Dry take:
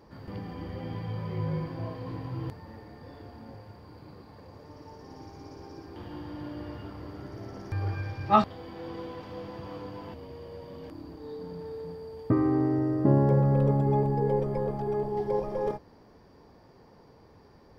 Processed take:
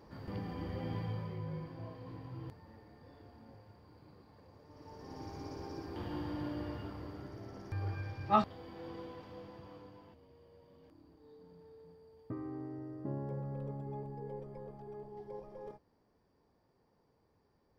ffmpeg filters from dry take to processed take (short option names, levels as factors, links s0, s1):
-af "volume=2.66,afade=t=out:st=1:d=0.4:silence=0.398107,afade=t=in:st=4.68:d=0.64:silence=0.281838,afade=t=out:st=6.22:d=1.19:silence=0.421697,afade=t=out:st=8.88:d=1.3:silence=0.281838"